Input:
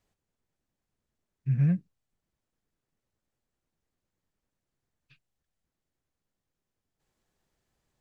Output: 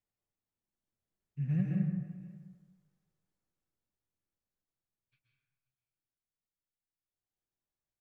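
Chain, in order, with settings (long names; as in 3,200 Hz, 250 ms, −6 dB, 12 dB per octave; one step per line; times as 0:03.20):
source passing by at 0:02.25, 22 m/s, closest 7.6 metres
single-tap delay 527 ms −20 dB
dense smooth reverb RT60 1.3 s, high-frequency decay 0.55×, pre-delay 110 ms, DRR −1.5 dB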